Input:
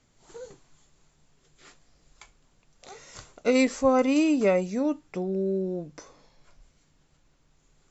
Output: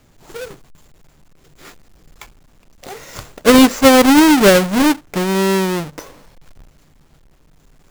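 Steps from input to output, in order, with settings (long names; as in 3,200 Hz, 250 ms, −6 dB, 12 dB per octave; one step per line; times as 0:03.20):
each half-wave held at its own peak
level +8.5 dB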